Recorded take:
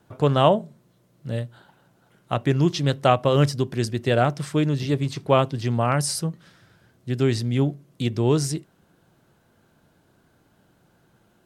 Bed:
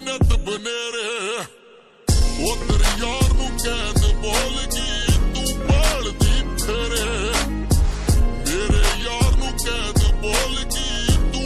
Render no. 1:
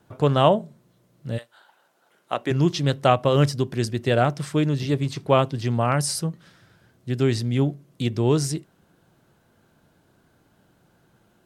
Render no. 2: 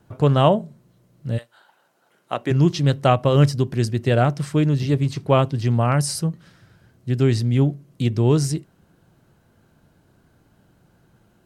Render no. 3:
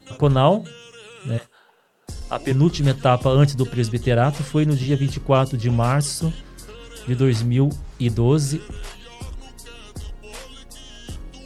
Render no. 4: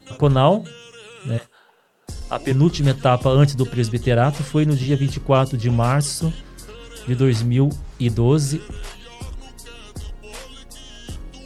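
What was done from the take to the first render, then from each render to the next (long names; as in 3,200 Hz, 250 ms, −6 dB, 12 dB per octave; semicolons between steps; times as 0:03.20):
0:01.37–0:02.50: high-pass filter 880 Hz → 290 Hz
low-shelf EQ 170 Hz +8 dB; notch filter 3,500 Hz, Q 22
mix in bed −17.5 dB
level +1 dB; brickwall limiter −3 dBFS, peak gain reduction 1.5 dB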